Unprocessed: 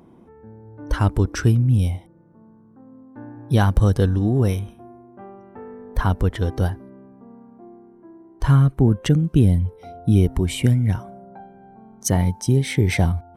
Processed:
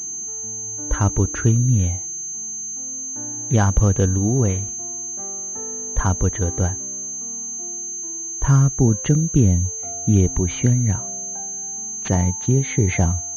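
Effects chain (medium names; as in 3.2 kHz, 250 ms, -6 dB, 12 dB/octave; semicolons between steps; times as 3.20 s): class-D stage that switches slowly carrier 6.3 kHz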